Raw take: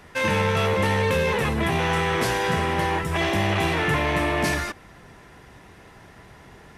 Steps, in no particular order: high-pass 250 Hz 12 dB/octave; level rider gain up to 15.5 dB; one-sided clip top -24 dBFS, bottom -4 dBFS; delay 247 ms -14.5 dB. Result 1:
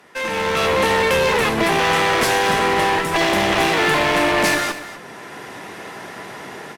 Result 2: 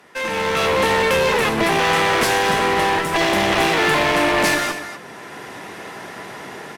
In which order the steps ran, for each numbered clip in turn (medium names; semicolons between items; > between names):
level rider > high-pass > one-sided clip > delay; delay > level rider > high-pass > one-sided clip